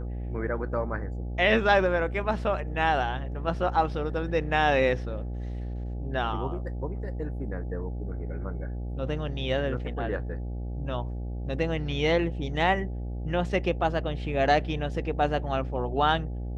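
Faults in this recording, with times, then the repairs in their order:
buzz 60 Hz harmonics 14 -33 dBFS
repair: de-hum 60 Hz, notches 14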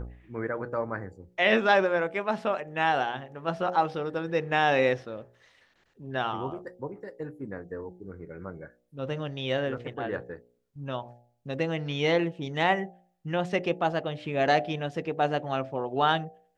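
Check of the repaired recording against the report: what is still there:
none

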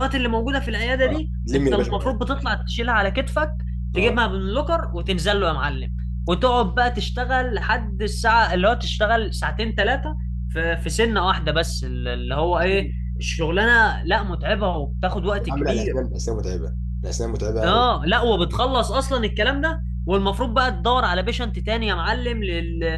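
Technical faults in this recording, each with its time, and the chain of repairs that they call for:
hum 60 Hz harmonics 3 -26 dBFS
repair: de-hum 60 Hz, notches 3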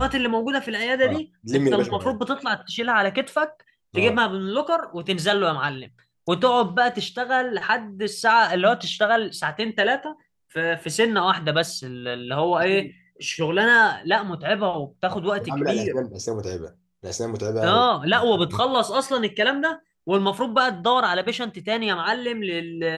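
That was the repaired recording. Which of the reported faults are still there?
none

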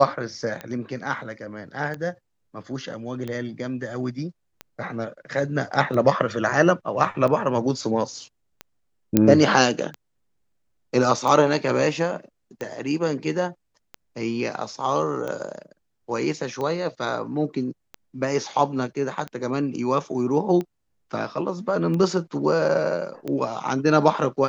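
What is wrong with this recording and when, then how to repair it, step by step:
tick 45 rpm -18 dBFS
9.17 pop -3 dBFS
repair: de-click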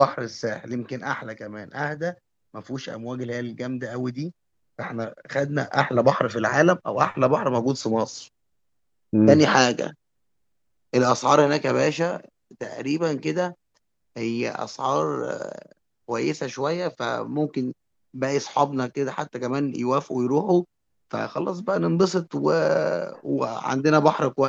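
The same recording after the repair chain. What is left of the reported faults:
none

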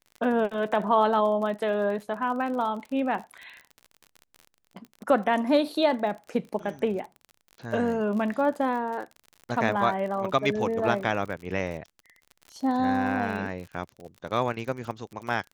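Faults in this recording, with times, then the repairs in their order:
crackle 45/s -35 dBFS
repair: de-click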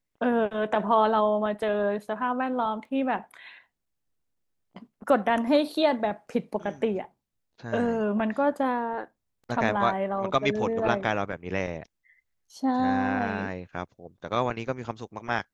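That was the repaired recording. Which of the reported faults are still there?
none

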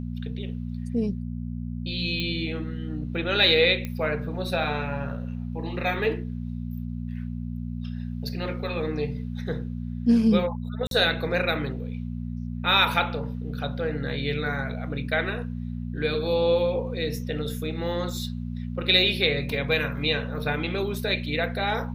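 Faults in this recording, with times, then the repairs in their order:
hum 60 Hz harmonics 4 -32 dBFS
2.2 pop -16 dBFS
3.85 pop -18 dBFS
10.87–10.91 gap 42 ms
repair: de-click; de-hum 60 Hz, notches 4; interpolate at 10.87, 42 ms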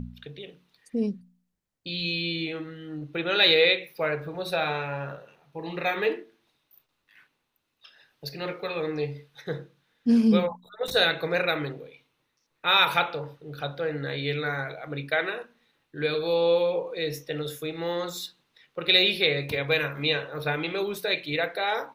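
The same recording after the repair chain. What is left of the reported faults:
none

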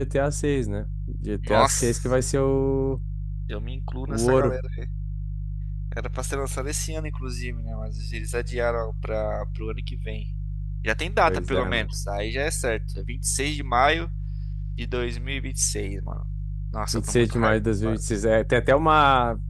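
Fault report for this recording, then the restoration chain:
hum 50 Hz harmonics 3 -30 dBFS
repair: de-hum 50 Hz, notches 3

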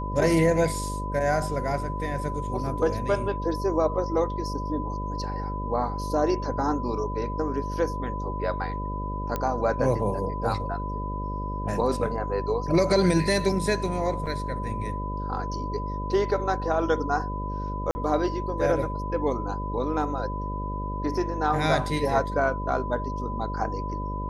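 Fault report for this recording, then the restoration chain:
buzz 50 Hz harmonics 12 -32 dBFS
tone 1000 Hz -33 dBFS
9.36 pop -14 dBFS
14.26–14.27 gap 6 ms
17.91–17.95 gap 40 ms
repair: de-click; notch 1000 Hz, Q 30; de-hum 50 Hz, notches 12; interpolate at 14.26, 6 ms; interpolate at 17.91, 40 ms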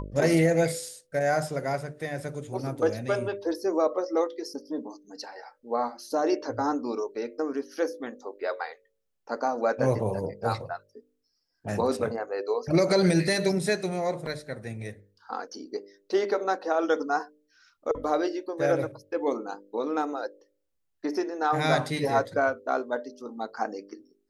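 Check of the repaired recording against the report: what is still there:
none

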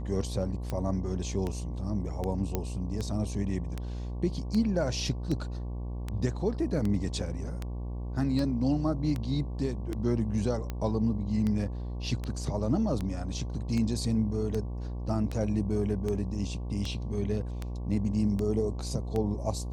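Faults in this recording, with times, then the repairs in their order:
buzz 60 Hz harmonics 19 -35 dBFS
tick 78 rpm -20 dBFS
2.55 pop -15 dBFS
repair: de-click; de-hum 60 Hz, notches 19

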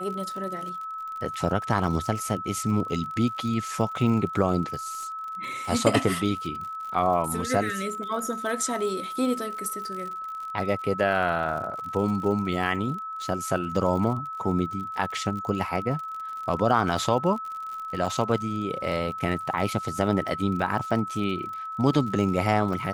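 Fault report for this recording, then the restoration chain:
crackle 56/s -34 dBFS
tone 1300 Hz -32 dBFS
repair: de-click; notch 1300 Hz, Q 30

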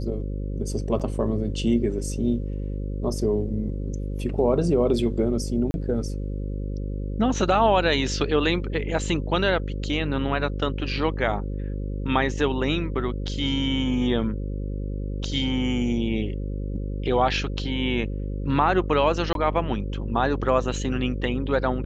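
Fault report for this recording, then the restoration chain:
buzz 50 Hz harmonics 11 -29 dBFS
0.99–1 gap 7.4 ms
5.71–5.74 gap 31 ms
19.33–19.35 gap 22 ms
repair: de-hum 50 Hz, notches 11; interpolate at 0.99, 7.4 ms; interpolate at 5.71, 31 ms; interpolate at 19.33, 22 ms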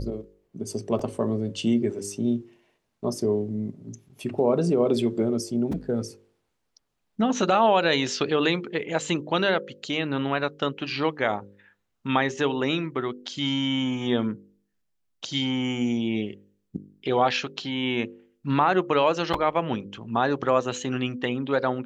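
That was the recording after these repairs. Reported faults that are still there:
none

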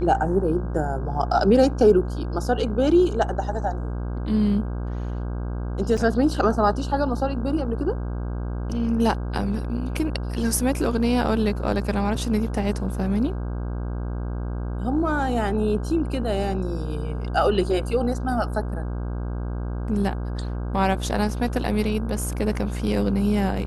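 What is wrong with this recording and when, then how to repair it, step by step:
buzz 60 Hz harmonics 27 -28 dBFS
5.97 gap 4.7 ms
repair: de-hum 60 Hz, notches 27; interpolate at 5.97, 4.7 ms

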